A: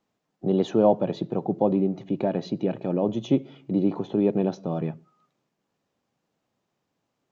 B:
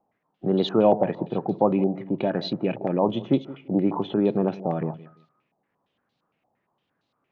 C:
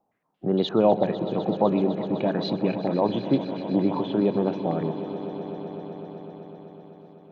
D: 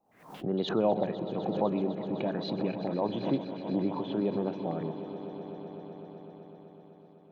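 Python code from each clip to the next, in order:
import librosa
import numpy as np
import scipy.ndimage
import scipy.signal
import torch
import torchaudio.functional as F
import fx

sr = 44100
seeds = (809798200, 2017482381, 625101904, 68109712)

y1 = fx.echo_feedback(x, sr, ms=170, feedback_pct=23, wet_db=-18)
y1 = fx.filter_held_lowpass(y1, sr, hz=8.7, low_hz=780.0, high_hz=4000.0)
y2 = fx.echo_swell(y1, sr, ms=126, loudest=5, wet_db=-16.0)
y2 = F.gain(torch.from_numpy(y2), -1.0).numpy()
y3 = fx.pre_swell(y2, sr, db_per_s=100.0)
y3 = F.gain(torch.from_numpy(y3), -7.5).numpy()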